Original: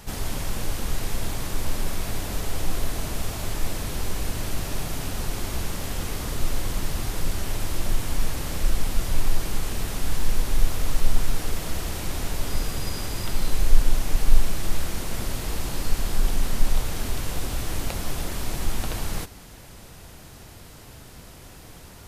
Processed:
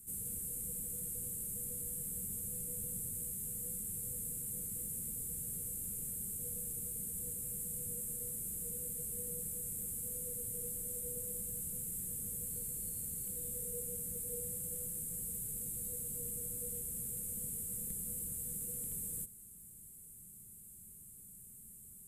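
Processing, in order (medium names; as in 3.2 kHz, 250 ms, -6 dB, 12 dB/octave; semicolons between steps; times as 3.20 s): bass shelf 380 Hz -10.5 dB; frequency shift -500 Hz; FFT filter 200 Hz 0 dB, 280 Hz -13 dB, 740 Hz -30 dB, 1.7 kHz -25 dB, 5.5 kHz -25 dB, 8.1 kHz +7 dB; trim -6.5 dB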